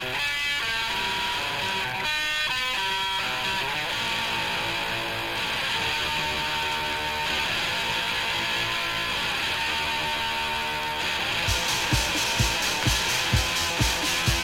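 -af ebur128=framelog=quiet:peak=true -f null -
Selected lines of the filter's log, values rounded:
Integrated loudness:
  I:         -24.4 LUFS
  Threshold: -34.4 LUFS
Loudness range:
  LRA:         2.2 LU
  Threshold: -44.6 LUFS
  LRA low:   -25.4 LUFS
  LRA high:  -23.1 LUFS
True peak:
  Peak:       -7.7 dBFS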